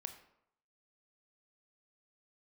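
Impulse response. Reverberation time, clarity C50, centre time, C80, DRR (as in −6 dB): 0.75 s, 10.0 dB, 12 ms, 12.5 dB, 7.0 dB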